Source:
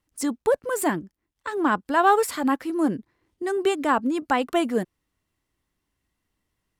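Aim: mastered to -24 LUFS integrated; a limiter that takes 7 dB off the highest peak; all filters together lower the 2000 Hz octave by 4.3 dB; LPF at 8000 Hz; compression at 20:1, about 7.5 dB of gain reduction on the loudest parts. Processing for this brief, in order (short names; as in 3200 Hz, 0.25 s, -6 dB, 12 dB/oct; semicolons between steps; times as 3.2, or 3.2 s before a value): LPF 8000 Hz; bell 2000 Hz -6 dB; compressor 20:1, threshold -23 dBFS; gain +7 dB; limiter -14 dBFS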